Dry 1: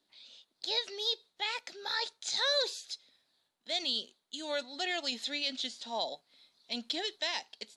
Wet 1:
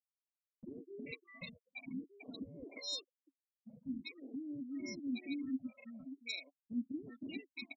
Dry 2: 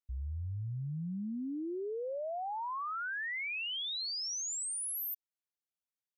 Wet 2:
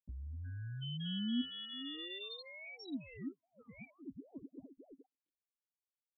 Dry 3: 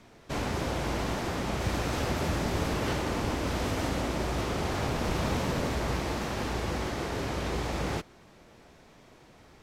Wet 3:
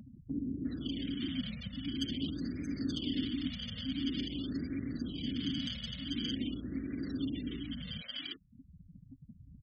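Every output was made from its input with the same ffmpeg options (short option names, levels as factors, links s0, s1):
-filter_complex "[0:a]aemphasis=mode=reproduction:type=riaa,acrusher=samples=28:mix=1:aa=0.000001,afftfilt=real='re*gte(hypot(re,im),0.0251)':imag='im*gte(hypot(re,im),0.0251)':win_size=1024:overlap=0.75,equalizer=f=9300:w=4:g=-10.5,acrossover=split=450[s0][s1];[s1]adelay=350[s2];[s0][s2]amix=inputs=2:normalize=0,acompressor=threshold=0.0891:ratio=6,asplit=3[s3][s4][s5];[s3]bandpass=f=270:t=q:w=8,volume=1[s6];[s4]bandpass=f=2290:t=q:w=8,volume=0.501[s7];[s5]bandpass=f=3010:t=q:w=8,volume=0.355[s8];[s6][s7][s8]amix=inputs=3:normalize=0,aexciter=amount=10.8:drive=4.6:freq=3200,acompressor=mode=upward:threshold=0.00562:ratio=2.5,afftfilt=real='re*(1-between(b*sr/1024,320*pow(3500/320,0.5+0.5*sin(2*PI*0.47*pts/sr))/1.41,320*pow(3500/320,0.5+0.5*sin(2*PI*0.47*pts/sr))*1.41))':imag='im*(1-between(b*sr/1024,320*pow(3500/320,0.5+0.5*sin(2*PI*0.47*pts/sr))/1.41,320*pow(3500/320,0.5+0.5*sin(2*PI*0.47*pts/sr))*1.41))':win_size=1024:overlap=0.75,volume=1.78"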